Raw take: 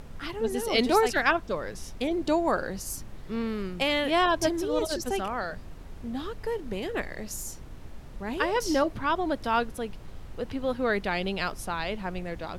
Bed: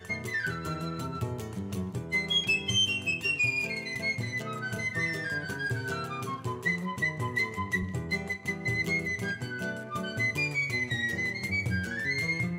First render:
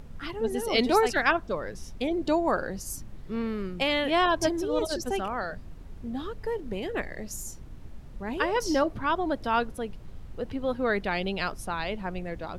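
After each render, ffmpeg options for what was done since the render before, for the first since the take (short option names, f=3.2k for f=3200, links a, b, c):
-af "afftdn=nr=6:nf=-43"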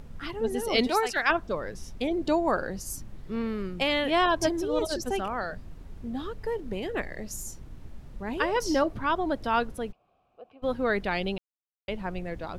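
-filter_complex "[0:a]asettb=1/sr,asplit=3[a][b][c];[a]atrim=end=0.874[d];[b]atrim=start=0.87:end=1.3,asetpts=PTS-STARTPTS,afade=t=in:d=0.004:c=qsin,afade=t=out:st=0.426:d=0.004:c=qsin,lowshelf=f=440:g=-11[e];[c]atrim=start=1.296[f];[d][e]acrossfade=d=0.004:c1=hsin:c2=qsin[g];[g][f]acrossfade=d=0.004:c1=qsin:c2=hsin,asplit=3[h][i][j];[h]afade=t=out:st=9.91:d=0.02[k];[i]asplit=3[l][m][n];[l]bandpass=f=730:t=q:w=8,volume=0dB[o];[m]bandpass=f=1.09k:t=q:w=8,volume=-6dB[p];[n]bandpass=f=2.44k:t=q:w=8,volume=-9dB[q];[o][p][q]amix=inputs=3:normalize=0,afade=t=in:st=9.91:d=0.02,afade=t=out:st=10.62:d=0.02[r];[j]afade=t=in:st=10.62:d=0.02[s];[k][r][s]amix=inputs=3:normalize=0,asplit=3[t][u][v];[t]atrim=end=11.38,asetpts=PTS-STARTPTS,afade=t=out:st=11.376:d=0.004:c=hsin[w];[u]atrim=start=11.38:end=11.88,asetpts=PTS-STARTPTS,volume=0[x];[v]atrim=start=11.88,asetpts=PTS-STARTPTS,afade=t=in:d=0.004:c=hsin[y];[w][x][y]concat=n=3:v=0:a=1"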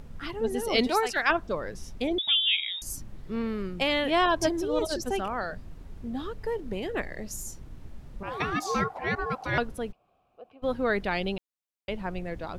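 -filter_complex "[0:a]asettb=1/sr,asplit=3[a][b][c];[a]atrim=end=2.184[d];[b]atrim=start=2.18:end=2.82,asetpts=PTS-STARTPTS,afade=t=in:d=0.004:c=qsin,afade=t=out:st=0.636:d=0.004:c=qsin,lowpass=f=3.2k:t=q:w=0.5098,lowpass=f=3.2k:t=q:w=0.6013,lowpass=f=3.2k:t=q:w=0.9,lowpass=f=3.2k:t=q:w=2.563,afreqshift=-3800[e];[c]atrim=start=2.816[f];[d][e]acrossfade=d=0.004:c1=hsin:c2=qsin[g];[g][f]acrossfade=d=0.004:c1=qsin:c2=hsin,asettb=1/sr,asplit=3[h][i][j];[h]atrim=end=8.234[k];[i]atrim=start=8.23:end=9.58,asetpts=PTS-STARTPTS,afade=t=in:d=0.004:c=qsin,afade=t=out:st=1.346:d=0.004:c=qsin,aeval=exprs='val(0)*sin(2*PI*770*n/s)':c=same[l];[j]atrim=start=9.576[m];[k][l]acrossfade=d=0.004:c1=hsin:c2=qsin[n];[n][m]acrossfade=d=0.004:c1=qsin:c2=hsin"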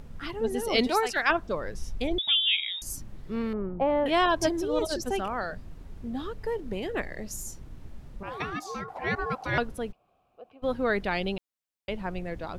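-filter_complex "[0:a]asettb=1/sr,asplit=3[a][b][c];[a]atrim=end=1.524[d];[b]atrim=start=1.52:end=2.27,asetpts=PTS-STARTPTS,afade=t=in:d=0.004:c=qsin,afade=t=out:st=0.746:d=0.004:c=qsin,asubboost=boost=12:cutoff=120[e];[c]atrim=start=2.266[f];[d][e]acrossfade=d=0.004:c1=hsin:c2=qsin[g];[g][f]acrossfade=d=0.004:c1=qsin:c2=hsin,asettb=1/sr,asplit=3[h][i][j];[h]atrim=end=3.534[k];[i]atrim=start=3.53:end=4.06,asetpts=PTS-STARTPTS,afade=t=in:d=0.004:c=qsin,afade=t=out:st=0.526:d=0.004:c=qsin,lowpass=f=840:t=q:w=2.1[l];[j]atrim=start=4.056[m];[k][l]acrossfade=d=0.004:c1=hsin:c2=qsin[n];[n][m]acrossfade=d=0.004:c1=qsin:c2=hsin,asplit=2[o][p];[o]atrim=end=8.88,asetpts=PTS-STARTPTS,afade=t=out:st=8.06:d=0.82:silence=0.266073[q];[p]atrim=start=8.88,asetpts=PTS-STARTPTS,afade=t=in:d=0.004:c=hsin:silence=0.266073[r];[q][r]concat=n=2:v=0:a=1"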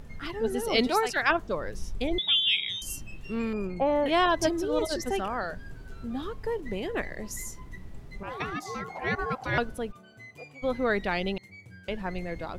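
-filter_complex "[1:a]volume=-19dB[a];[0:a][a]amix=inputs=2:normalize=0"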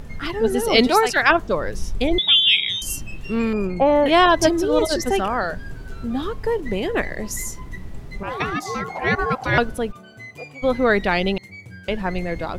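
-af "volume=9dB,alimiter=limit=-2dB:level=0:latency=1"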